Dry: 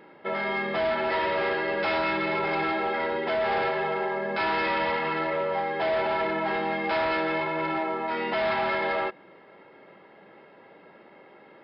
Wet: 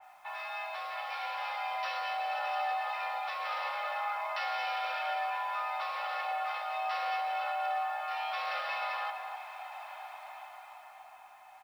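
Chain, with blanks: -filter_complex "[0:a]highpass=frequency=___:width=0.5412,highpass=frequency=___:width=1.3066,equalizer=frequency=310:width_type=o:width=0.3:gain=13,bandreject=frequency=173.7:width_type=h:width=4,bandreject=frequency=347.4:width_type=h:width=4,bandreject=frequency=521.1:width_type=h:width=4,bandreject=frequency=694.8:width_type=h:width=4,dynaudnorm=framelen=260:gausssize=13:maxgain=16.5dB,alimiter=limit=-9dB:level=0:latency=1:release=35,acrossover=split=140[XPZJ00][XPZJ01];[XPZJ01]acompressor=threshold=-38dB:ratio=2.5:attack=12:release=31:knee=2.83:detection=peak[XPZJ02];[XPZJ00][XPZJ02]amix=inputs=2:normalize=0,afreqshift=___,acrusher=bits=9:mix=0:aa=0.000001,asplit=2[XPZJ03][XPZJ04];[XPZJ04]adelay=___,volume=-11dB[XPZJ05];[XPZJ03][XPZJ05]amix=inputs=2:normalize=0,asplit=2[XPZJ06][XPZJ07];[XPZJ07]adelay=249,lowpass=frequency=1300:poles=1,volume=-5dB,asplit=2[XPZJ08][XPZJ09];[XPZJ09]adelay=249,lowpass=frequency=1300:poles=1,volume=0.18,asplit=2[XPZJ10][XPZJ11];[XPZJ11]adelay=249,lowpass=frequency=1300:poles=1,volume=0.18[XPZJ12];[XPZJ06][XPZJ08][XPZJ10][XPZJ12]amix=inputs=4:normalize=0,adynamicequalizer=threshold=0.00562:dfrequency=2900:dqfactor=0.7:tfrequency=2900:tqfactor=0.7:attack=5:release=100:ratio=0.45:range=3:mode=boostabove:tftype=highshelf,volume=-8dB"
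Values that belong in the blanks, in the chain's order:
70, 70, 440, 17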